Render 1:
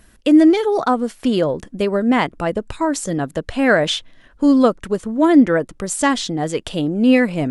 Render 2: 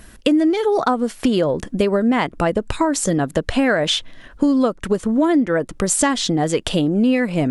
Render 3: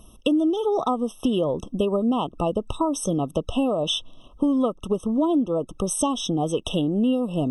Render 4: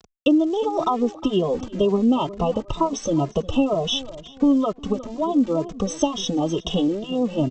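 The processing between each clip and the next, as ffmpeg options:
ffmpeg -i in.wav -af "acompressor=threshold=-22dB:ratio=6,volume=7.5dB" out.wav
ffmpeg -i in.wav -af "afftfilt=real='re*eq(mod(floor(b*sr/1024/1300),2),0)':imag='im*eq(mod(floor(b*sr/1024/1300),2),0)':win_size=1024:overlap=0.75,volume=-5dB" out.wav
ffmpeg -i in.wav -filter_complex "[0:a]aresample=16000,aeval=exprs='val(0)*gte(abs(val(0)),0.01)':channel_layout=same,aresample=44100,asplit=2[link_01][link_02];[link_02]adelay=358,lowpass=frequency=3100:poles=1,volume=-17dB,asplit=2[link_03][link_04];[link_04]adelay=358,lowpass=frequency=3100:poles=1,volume=0.36,asplit=2[link_05][link_06];[link_06]adelay=358,lowpass=frequency=3100:poles=1,volume=0.36[link_07];[link_01][link_03][link_05][link_07]amix=inputs=4:normalize=0,asplit=2[link_08][link_09];[link_09]adelay=2.4,afreqshift=2.1[link_10];[link_08][link_10]amix=inputs=2:normalize=1,volume=5dB" out.wav

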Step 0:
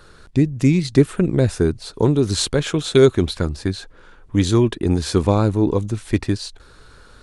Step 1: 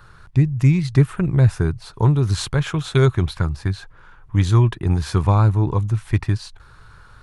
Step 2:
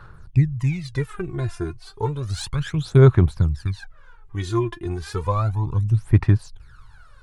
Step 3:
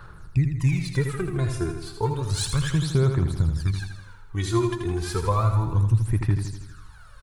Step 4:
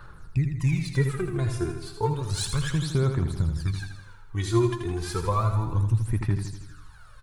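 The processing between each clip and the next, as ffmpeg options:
ffmpeg -i in.wav -af "equalizer=frequency=125:width_type=o:width=1:gain=8,equalizer=frequency=250:width_type=o:width=1:gain=-9,equalizer=frequency=500:width_type=o:width=1:gain=-8,equalizer=frequency=1000:width_type=o:width=1:gain=5,equalizer=frequency=4000:width_type=o:width=1:gain=-5,equalizer=frequency=8000:width_type=o:width=1:gain=-7" out.wav
ffmpeg -i in.wav -af "aphaser=in_gain=1:out_gain=1:delay=2.9:decay=0.76:speed=0.32:type=sinusoidal,volume=-8.5dB" out.wav
ffmpeg -i in.wav -filter_complex "[0:a]highshelf=frequency=7600:gain=10.5,alimiter=limit=-12.5dB:level=0:latency=1:release=199,asplit=2[link_01][link_02];[link_02]aecho=0:1:81|162|243|324|405|486|567:0.447|0.25|0.14|0.0784|0.0439|0.0246|0.0138[link_03];[link_01][link_03]amix=inputs=2:normalize=0" out.wav
ffmpeg -i in.wav -af "flanger=delay=3.2:depth=5.9:regen=72:speed=0.34:shape=triangular,volume=2.5dB" out.wav

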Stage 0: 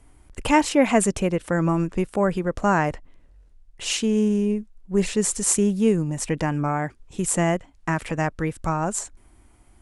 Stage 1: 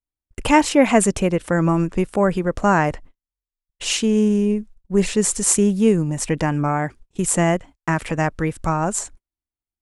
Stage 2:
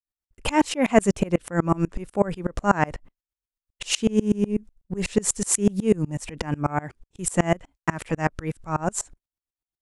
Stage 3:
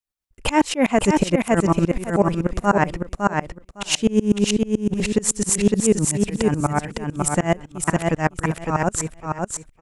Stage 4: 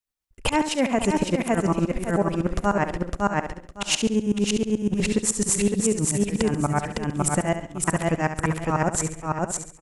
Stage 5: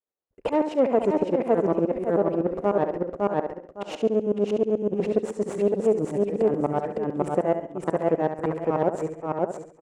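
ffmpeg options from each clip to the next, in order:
ffmpeg -i in.wav -af "agate=range=-45dB:threshold=-41dB:ratio=16:detection=peak,volume=3.5dB" out.wav
ffmpeg -i in.wav -af "aeval=exprs='val(0)*pow(10,-28*if(lt(mod(-8.1*n/s,1),2*abs(-8.1)/1000),1-mod(-8.1*n/s,1)/(2*abs(-8.1)/1000),(mod(-8.1*n/s,1)-2*abs(-8.1)/1000)/(1-2*abs(-8.1)/1000))/20)':channel_layout=same,volume=3dB" out.wav
ffmpeg -i in.wav -filter_complex "[0:a]asplit=2[link_01][link_02];[link_02]aecho=0:1:558|1116|1674:0.631|0.12|0.0228[link_03];[link_01][link_03]amix=inputs=2:normalize=0,alimiter=level_in=8dB:limit=-1dB:release=50:level=0:latency=1,volume=-4.5dB" out.wav
ffmpeg -i in.wav -filter_complex "[0:a]acompressor=threshold=-18dB:ratio=6,asplit=2[link_01][link_02];[link_02]aecho=0:1:69|138|207|276:0.316|0.13|0.0532|0.0218[link_03];[link_01][link_03]amix=inputs=2:normalize=0" out.wav
ffmpeg -i in.wav -af "aeval=exprs='clip(val(0),-1,0.0473)':channel_layout=same,bandpass=frequency=480:width_type=q:width=2:csg=0,volume=8dB" out.wav

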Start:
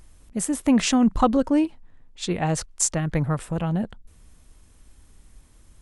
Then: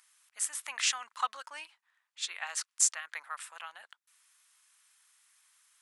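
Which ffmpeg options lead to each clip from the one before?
ffmpeg -i in.wav -af "highpass=frequency=1200:width=0.5412,highpass=frequency=1200:width=1.3066,volume=-3dB" out.wav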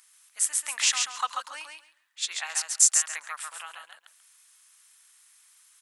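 ffmpeg -i in.wav -filter_complex "[0:a]highshelf=frequency=3900:gain=7,asplit=2[link_01][link_02];[link_02]aecho=0:1:137|274|411:0.596|0.101|0.0172[link_03];[link_01][link_03]amix=inputs=2:normalize=0,volume=1.5dB" out.wav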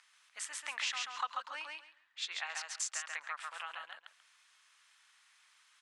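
ffmpeg -i in.wav -af "lowpass=3600,acompressor=threshold=-42dB:ratio=2,volume=1.5dB" out.wav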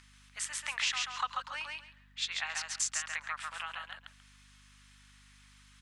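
ffmpeg -i in.wav -af "aeval=exprs='val(0)+0.00112*(sin(2*PI*50*n/s)+sin(2*PI*2*50*n/s)/2+sin(2*PI*3*50*n/s)/3+sin(2*PI*4*50*n/s)/4+sin(2*PI*5*50*n/s)/5)':channel_layout=same,tiltshelf=frequency=830:gain=-3.5,volume=1.5dB" out.wav

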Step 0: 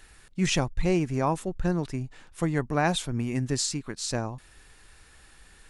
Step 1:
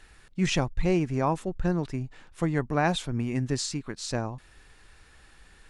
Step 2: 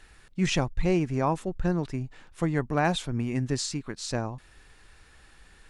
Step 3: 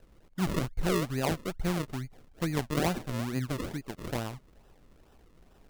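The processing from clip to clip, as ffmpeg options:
ffmpeg -i in.wav -af "highshelf=frequency=8300:gain=-11.5" out.wav
ffmpeg -i in.wav -af "asoftclip=type=hard:threshold=-13dB" out.wav
ffmpeg -i in.wav -af "acrusher=samples=39:mix=1:aa=0.000001:lfo=1:lforange=39:lforate=2.3,volume=-4dB" out.wav

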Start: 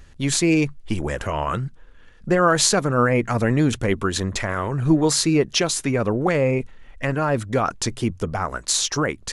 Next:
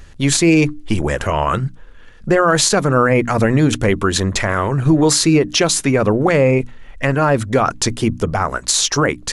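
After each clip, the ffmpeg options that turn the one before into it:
ffmpeg -i in.wav -af "bandreject=frequency=60:width_type=h:width=6,bandreject=frequency=120:width_type=h:width=6,bandreject=frequency=180:width_type=h:width=6,bandreject=frequency=240:width_type=h:width=6,bandreject=frequency=300:width_type=h:width=6,alimiter=level_in=10.5dB:limit=-1dB:release=50:level=0:latency=1,volume=-3.5dB" out.wav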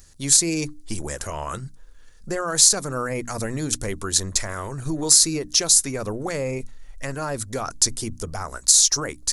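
ffmpeg -i in.wav -af "asubboost=boost=3:cutoff=74,aexciter=amount=8.1:drive=1.2:freq=4200,volume=-13dB" out.wav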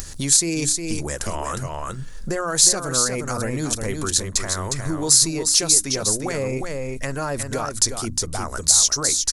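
ffmpeg -i in.wav -af "aecho=1:1:359:0.501,acompressor=mode=upward:threshold=-20dB:ratio=2.5" out.wav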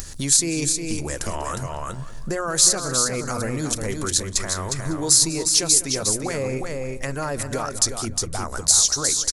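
ffmpeg -i in.wav -filter_complex "[0:a]asplit=2[link_01][link_02];[link_02]adelay=194,lowpass=frequency=4300:poles=1,volume=-14dB,asplit=2[link_03][link_04];[link_04]adelay=194,lowpass=frequency=4300:poles=1,volume=0.39,asplit=2[link_05][link_06];[link_06]adelay=194,lowpass=frequency=4300:poles=1,volume=0.39,asplit=2[link_07][link_08];[link_08]adelay=194,lowpass=frequency=4300:poles=1,volume=0.39[link_09];[link_01][link_03][link_05][link_07][link_09]amix=inputs=5:normalize=0,volume=-1dB" out.wav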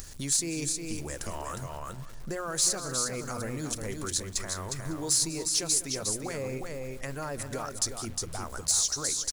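ffmpeg -i in.wav -af "acrusher=bits=8:dc=4:mix=0:aa=0.000001,asoftclip=type=tanh:threshold=-7dB,volume=-8.5dB" out.wav

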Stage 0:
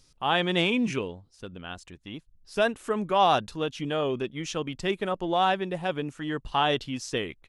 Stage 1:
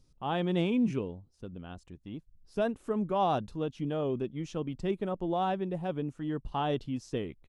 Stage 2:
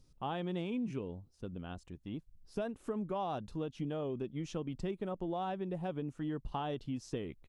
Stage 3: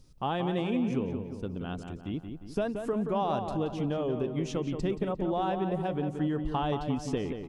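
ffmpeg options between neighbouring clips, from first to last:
ffmpeg -i in.wav -af "firequalizer=gain_entry='entry(200,0);entry(430,-4);entry(1700,-14)':delay=0.05:min_phase=1" out.wav
ffmpeg -i in.wav -af "acompressor=threshold=-34dB:ratio=6" out.wav
ffmpeg -i in.wav -filter_complex "[0:a]asplit=2[link_01][link_02];[link_02]adelay=177,lowpass=frequency=2600:poles=1,volume=-6.5dB,asplit=2[link_03][link_04];[link_04]adelay=177,lowpass=frequency=2600:poles=1,volume=0.53,asplit=2[link_05][link_06];[link_06]adelay=177,lowpass=frequency=2600:poles=1,volume=0.53,asplit=2[link_07][link_08];[link_08]adelay=177,lowpass=frequency=2600:poles=1,volume=0.53,asplit=2[link_09][link_10];[link_10]adelay=177,lowpass=frequency=2600:poles=1,volume=0.53,asplit=2[link_11][link_12];[link_12]adelay=177,lowpass=frequency=2600:poles=1,volume=0.53,asplit=2[link_13][link_14];[link_14]adelay=177,lowpass=frequency=2600:poles=1,volume=0.53[link_15];[link_01][link_03][link_05][link_07][link_09][link_11][link_13][link_15]amix=inputs=8:normalize=0,volume=7dB" out.wav

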